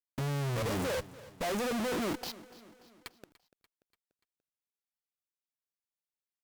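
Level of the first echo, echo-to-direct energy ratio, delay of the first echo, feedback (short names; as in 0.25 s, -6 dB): -19.0 dB, -17.5 dB, 0.291 s, 53%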